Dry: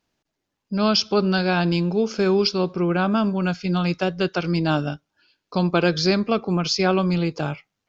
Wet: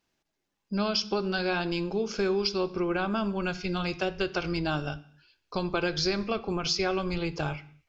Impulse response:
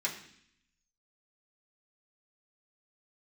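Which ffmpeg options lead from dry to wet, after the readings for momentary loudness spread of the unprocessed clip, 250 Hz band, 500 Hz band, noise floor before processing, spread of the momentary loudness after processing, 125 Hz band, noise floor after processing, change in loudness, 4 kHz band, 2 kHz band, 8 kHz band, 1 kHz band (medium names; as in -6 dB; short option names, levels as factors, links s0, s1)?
6 LU, -9.5 dB, -7.0 dB, -81 dBFS, 6 LU, -11.0 dB, -81 dBFS, -7.5 dB, -6.0 dB, -5.0 dB, no reading, -7.0 dB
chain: -filter_complex "[0:a]asubboost=boost=11.5:cutoff=57,acompressor=threshold=0.0794:ratio=6,asplit=2[s0][s1];[1:a]atrim=start_sample=2205,afade=t=out:st=0.34:d=0.01,atrim=end_sample=15435[s2];[s1][s2]afir=irnorm=-1:irlink=0,volume=0.251[s3];[s0][s3]amix=inputs=2:normalize=0,volume=0.708"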